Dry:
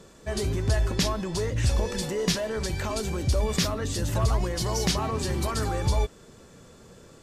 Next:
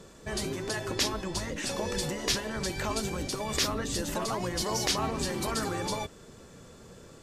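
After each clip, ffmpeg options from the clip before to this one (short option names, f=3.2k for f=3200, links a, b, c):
-af "afftfilt=real='re*lt(hypot(re,im),0.251)':imag='im*lt(hypot(re,im),0.251)':win_size=1024:overlap=0.75"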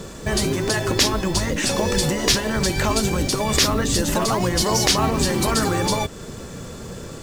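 -filter_complex "[0:a]bass=f=250:g=3,treble=f=4k:g=1,asplit=2[a][b];[b]acompressor=threshold=-38dB:ratio=6,volume=1.5dB[c];[a][c]amix=inputs=2:normalize=0,acrusher=bits=6:mode=log:mix=0:aa=0.000001,volume=7.5dB"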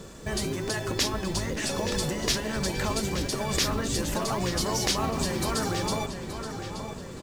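-filter_complex "[0:a]asplit=2[a][b];[b]adelay=875,lowpass=f=4.6k:p=1,volume=-8dB,asplit=2[c][d];[d]adelay=875,lowpass=f=4.6k:p=1,volume=0.5,asplit=2[e][f];[f]adelay=875,lowpass=f=4.6k:p=1,volume=0.5,asplit=2[g][h];[h]adelay=875,lowpass=f=4.6k:p=1,volume=0.5,asplit=2[i][j];[j]adelay=875,lowpass=f=4.6k:p=1,volume=0.5,asplit=2[k][l];[l]adelay=875,lowpass=f=4.6k:p=1,volume=0.5[m];[a][c][e][g][i][k][m]amix=inputs=7:normalize=0,volume=-8.5dB"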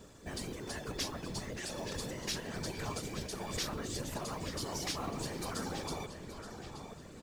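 -af "afftfilt=real='hypot(re,im)*cos(2*PI*random(0))':imag='hypot(re,im)*sin(2*PI*random(1))':win_size=512:overlap=0.75,volume=-5dB"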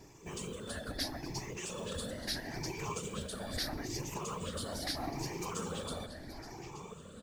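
-af "afftfilt=real='re*pow(10,12/40*sin(2*PI*(0.74*log(max(b,1)*sr/1024/100)/log(2)-(0.77)*(pts-256)/sr)))':imag='im*pow(10,12/40*sin(2*PI*(0.74*log(max(b,1)*sr/1024/100)/log(2)-(0.77)*(pts-256)/sr)))':win_size=1024:overlap=0.75,volume=-2dB"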